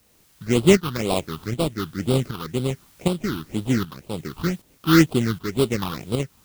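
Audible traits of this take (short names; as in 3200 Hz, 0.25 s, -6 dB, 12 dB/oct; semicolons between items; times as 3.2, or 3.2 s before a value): aliases and images of a low sample rate 1700 Hz, jitter 20%; phasing stages 6, 2 Hz, lowest notch 530–1800 Hz; a quantiser's noise floor 10-bit, dither triangular; tremolo saw up 1.3 Hz, depth 65%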